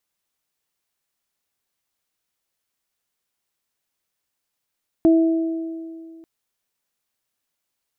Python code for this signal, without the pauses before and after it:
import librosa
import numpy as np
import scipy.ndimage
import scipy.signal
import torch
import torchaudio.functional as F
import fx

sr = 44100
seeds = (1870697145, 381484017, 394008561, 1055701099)

y = fx.additive(sr, length_s=1.19, hz=327.0, level_db=-10, upper_db=(-11.0,), decay_s=2.26, upper_decays_s=(1.77,))